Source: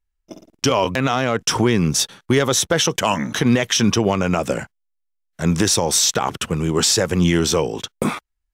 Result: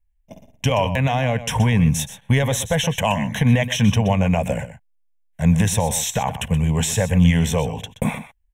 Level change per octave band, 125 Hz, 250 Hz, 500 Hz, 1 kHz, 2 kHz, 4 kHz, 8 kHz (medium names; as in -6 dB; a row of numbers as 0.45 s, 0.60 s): +5.0 dB, -0.5 dB, -3.5 dB, -1.5 dB, -1.5 dB, -6.5 dB, -6.0 dB